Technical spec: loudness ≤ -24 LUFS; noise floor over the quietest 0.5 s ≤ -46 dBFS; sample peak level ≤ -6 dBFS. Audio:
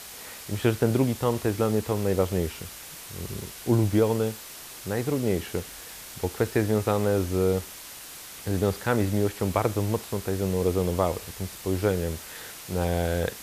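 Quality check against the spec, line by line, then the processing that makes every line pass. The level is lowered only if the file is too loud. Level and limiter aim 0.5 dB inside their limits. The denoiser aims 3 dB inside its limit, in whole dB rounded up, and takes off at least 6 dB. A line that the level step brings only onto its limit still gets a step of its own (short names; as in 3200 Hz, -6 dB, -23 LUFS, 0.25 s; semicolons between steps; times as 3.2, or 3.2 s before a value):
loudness -27.0 LUFS: OK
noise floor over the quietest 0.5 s -42 dBFS: fail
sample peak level -8.5 dBFS: OK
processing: denoiser 7 dB, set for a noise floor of -42 dBFS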